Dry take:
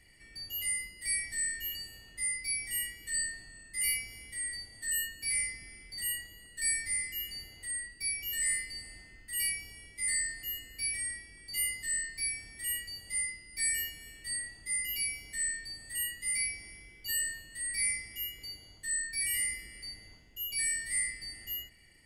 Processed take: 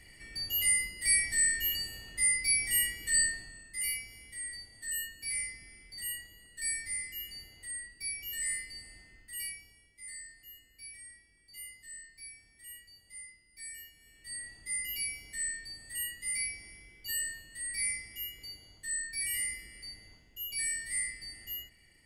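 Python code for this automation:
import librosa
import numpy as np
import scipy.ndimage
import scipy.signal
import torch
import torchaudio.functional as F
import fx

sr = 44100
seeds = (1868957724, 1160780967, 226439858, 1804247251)

y = fx.gain(x, sr, db=fx.line((3.25, 6.0), (3.88, -3.5), (9.18, -3.5), (9.91, -14.0), (13.93, -14.0), (14.52, -2.0)))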